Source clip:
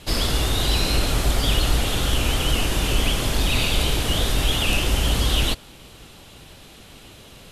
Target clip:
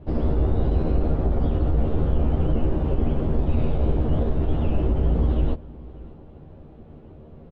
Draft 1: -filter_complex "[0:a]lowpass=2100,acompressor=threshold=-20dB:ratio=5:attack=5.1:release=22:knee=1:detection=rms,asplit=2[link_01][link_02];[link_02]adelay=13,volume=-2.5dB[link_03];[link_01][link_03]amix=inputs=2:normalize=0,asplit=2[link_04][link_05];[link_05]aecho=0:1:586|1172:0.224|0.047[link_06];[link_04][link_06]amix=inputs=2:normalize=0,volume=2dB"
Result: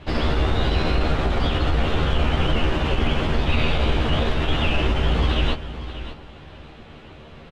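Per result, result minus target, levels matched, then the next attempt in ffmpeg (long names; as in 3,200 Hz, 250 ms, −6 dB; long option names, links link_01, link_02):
2,000 Hz band +18.0 dB; echo-to-direct +9.5 dB
-filter_complex "[0:a]lowpass=530,acompressor=threshold=-20dB:ratio=5:attack=5.1:release=22:knee=1:detection=rms,asplit=2[link_01][link_02];[link_02]adelay=13,volume=-2.5dB[link_03];[link_01][link_03]amix=inputs=2:normalize=0,asplit=2[link_04][link_05];[link_05]aecho=0:1:586|1172:0.224|0.047[link_06];[link_04][link_06]amix=inputs=2:normalize=0,volume=2dB"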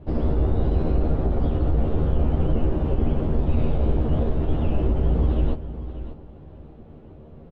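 echo-to-direct +9.5 dB
-filter_complex "[0:a]lowpass=530,acompressor=threshold=-20dB:ratio=5:attack=5.1:release=22:knee=1:detection=rms,asplit=2[link_01][link_02];[link_02]adelay=13,volume=-2.5dB[link_03];[link_01][link_03]amix=inputs=2:normalize=0,asplit=2[link_04][link_05];[link_05]aecho=0:1:586|1172:0.075|0.0157[link_06];[link_04][link_06]amix=inputs=2:normalize=0,volume=2dB"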